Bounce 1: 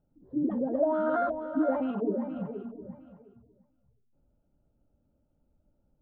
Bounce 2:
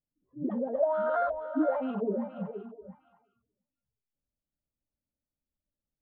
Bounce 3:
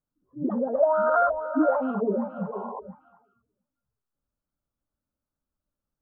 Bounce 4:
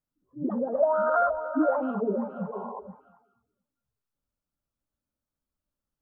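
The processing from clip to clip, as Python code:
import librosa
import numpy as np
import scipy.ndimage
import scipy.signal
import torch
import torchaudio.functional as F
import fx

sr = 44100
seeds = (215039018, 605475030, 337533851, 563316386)

y1 = fx.noise_reduce_blind(x, sr, reduce_db=22)
y2 = fx.spec_paint(y1, sr, seeds[0], shape='noise', start_s=2.52, length_s=0.28, low_hz=400.0, high_hz=1100.0, level_db=-43.0)
y2 = fx.high_shelf_res(y2, sr, hz=1700.0, db=-7.5, q=3.0)
y2 = F.gain(torch.from_numpy(y2), 4.5).numpy()
y3 = y2 + 10.0 ** (-20.0 / 20.0) * np.pad(y2, (int(208 * sr / 1000.0), 0))[:len(y2)]
y3 = F.gain(torch.from_numpy(y3), -2.0).numpy()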